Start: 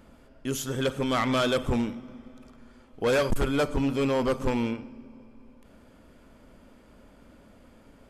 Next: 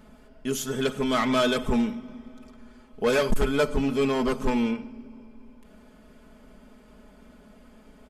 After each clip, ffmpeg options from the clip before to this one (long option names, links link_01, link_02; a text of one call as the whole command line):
ffmpeg -i in.wav -af "aecho=1:1:4.7:0.67" out.wav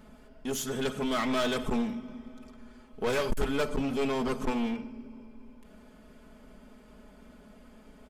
ffmpeg -i in.wav -filter_complex "[0:a]asplit=2[link_01][link_02];[link_02]alimiter=limit=-22dB:level=0:latency=1:release=28,volume=-2dB[link_03];[link_01][link_03]amix=inputs=2:normalize=0,aeval=exprs='clip(val(0),-1,0.0631)':channel_layout=same,volume=-6.5dB" out.wav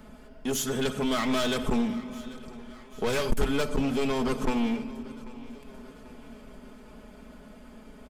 ffmpeg -i in.wav -filter_complex "[0:a]acrossover=split=220|3000[link_01][link_02][link_03];[link_02]acompressor=threshold=-32dB:ratio=2.5[link_04];[link_01][link_04][link_03]amix=inputs=3:normalize=0,aecho=1:1:791|1582|2373|3164|3955:0.112|0.0617|0.0339|0.0187|0.0103,volume=4.5dB" out.wav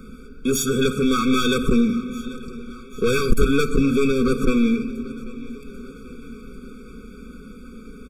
ffmpeg -i in.wav -af "afftfilt=real='re*eq(mod(floor(b*sr/1024/540),2),0)':imag='im*eq(mod(floor(b*sr/1024/540),2),0)':win_size=1024:overlap=0.75,volume=9dB" out.wav